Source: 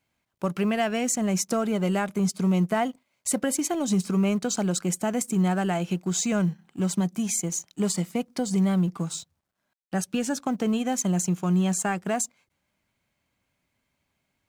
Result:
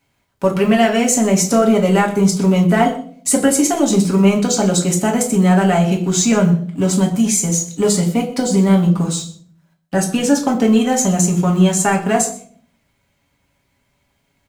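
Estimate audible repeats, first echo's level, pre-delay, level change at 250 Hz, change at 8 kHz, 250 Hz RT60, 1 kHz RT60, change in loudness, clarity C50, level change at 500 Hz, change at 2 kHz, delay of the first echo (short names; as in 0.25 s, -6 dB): 1, -18.5 dB, 4 ms, +10.5 dB, +10.5 dB, 0.75 s, 0.45 s, +11.0 dB, 10.5 dB, +12.5 dB, +10.5 dB, 0.124 s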